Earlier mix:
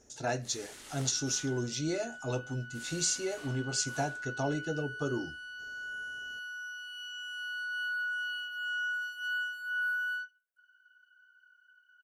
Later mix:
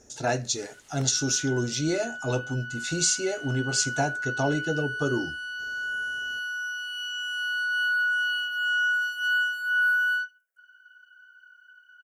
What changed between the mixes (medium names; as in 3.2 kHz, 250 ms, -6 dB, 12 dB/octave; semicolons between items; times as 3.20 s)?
speech +6.5 dB; first sound -8.5 dB; second sound +9.5 dB